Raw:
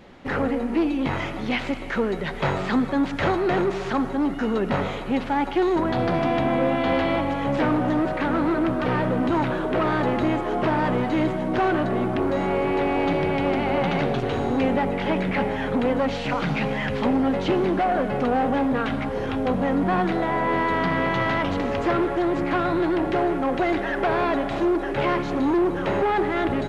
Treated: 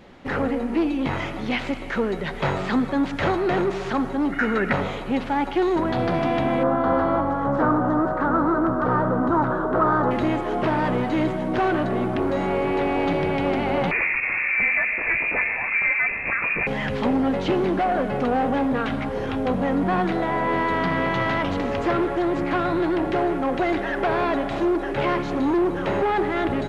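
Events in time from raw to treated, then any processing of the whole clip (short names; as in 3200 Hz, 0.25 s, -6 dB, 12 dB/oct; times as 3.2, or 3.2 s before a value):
4.32–4.73 band shelf 1800 Hz +12 dB 1 oct
6.63–10.11 resonant high shelf 1800 Hz -10.5 dB, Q 3
13.91–16.67 inverted band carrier 2600 Hz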